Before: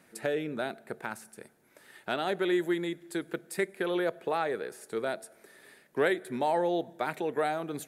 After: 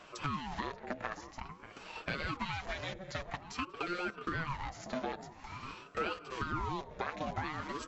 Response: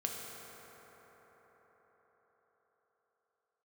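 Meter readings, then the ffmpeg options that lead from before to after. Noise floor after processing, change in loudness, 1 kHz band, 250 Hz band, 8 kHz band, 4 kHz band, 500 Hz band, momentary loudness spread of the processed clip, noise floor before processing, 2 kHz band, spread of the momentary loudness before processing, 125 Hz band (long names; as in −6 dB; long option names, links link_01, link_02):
−54 dBFS, −7.5 dB, −4.0 dB, −9.0 dB, −6.5 dB, −3.0 dB, −13.0 dB, 9 LU, −63 dBFS, −4.0 dB, 11 LU, +2.0 dB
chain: -filter_complex "[0:a]acrossover=split=310[link_01][link_02];[link_01]aeval=exprs='(mod(150*val(0)+1,2)-1)/150':channel_layout=same[link_03];[link_03][link_02]amix=inputs=2:normalize=0,aecho=1:1:7.2:0.57,acompressor=threshold=-45dB:ratio=3,afftfilt=real='re*between(b*sr/4096,130,7100)':imag='im*between(b*sr/4096,130,7100)':win_size=4096:overlap=0.75,asplit=2[link_04][link_05];[link_05]adelay=589,lowpass=frequency=820:poles=1,volume=-9dB,asplit=2[link_06][link_07];[link_07]adelay=589,lowpass=frequency=820:poles=1,volume=0.48,asplit=2[link_08][link_09];[link_09]adelay=589,lowpass=frequency=820:poles=1,volume=0.48,asplit=2[link_10][link_11];[link_11]adelay=589,lowpass=frequency=820:poles=1,volume=0.48,asplit=2[link_12][link_13];[link_13]adelay=589,lowpass=frequency=820:poles=1,volume=0.48[link_14];[link_06][link_08][link_10][link_12][link_14]amix=inputs=5:normalize=0[link_15];[link_04][link_15]amix=inputs=2:normalize=0,aeval=exprs='val(0)*sin(2*PI*540*n/s+540*0.65/0.49*sin(2*PI*0.49*n/s))':channel_layout=same,volume=9dB"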